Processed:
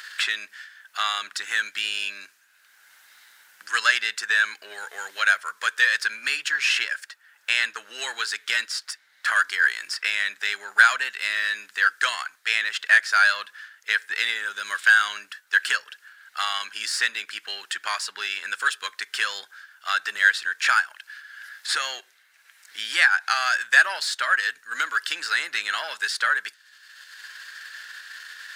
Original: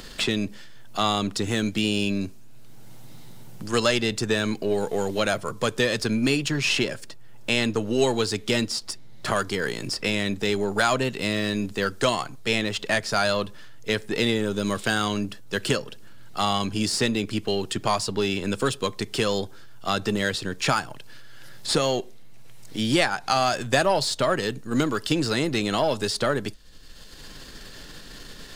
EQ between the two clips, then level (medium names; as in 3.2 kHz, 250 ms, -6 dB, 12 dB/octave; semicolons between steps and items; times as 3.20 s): resonant high-pass 1.6 kHz, resonance Q 5.4; -1.5 dB